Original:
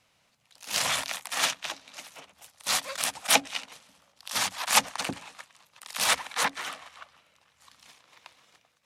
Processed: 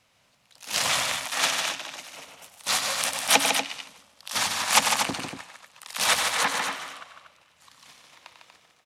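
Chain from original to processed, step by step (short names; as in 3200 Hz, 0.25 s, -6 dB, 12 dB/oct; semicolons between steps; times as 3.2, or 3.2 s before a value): loudspeakers at several distances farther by 33 m -8 dB, 52 m -6 dB, 82 m -8 dB; Doppler distortion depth 0.22 ms; gain +2 dB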